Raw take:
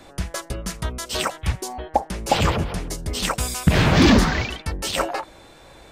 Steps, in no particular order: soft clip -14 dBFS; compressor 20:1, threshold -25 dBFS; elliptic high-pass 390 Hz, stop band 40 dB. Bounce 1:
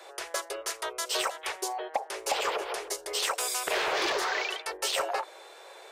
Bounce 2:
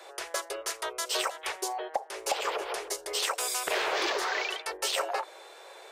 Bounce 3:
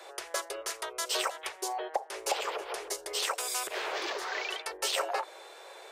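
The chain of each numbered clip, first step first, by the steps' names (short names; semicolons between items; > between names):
elliptic high-pass > soft clip > compressor; elliptic high-pass > compressor > soft clip; compressor > elliptic high-pass > soft clip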